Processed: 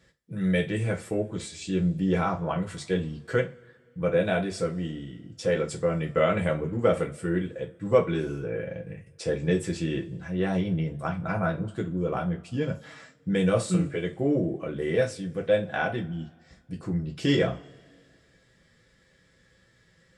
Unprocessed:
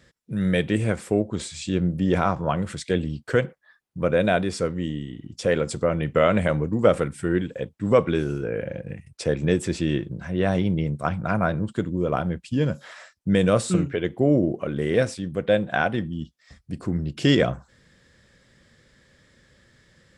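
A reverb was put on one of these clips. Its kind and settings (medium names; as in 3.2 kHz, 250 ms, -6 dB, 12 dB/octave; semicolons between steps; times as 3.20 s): two-slope reverb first 0.21 s, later 2 s, from -28 dB, DRR -1 dB; trim -7.5 dB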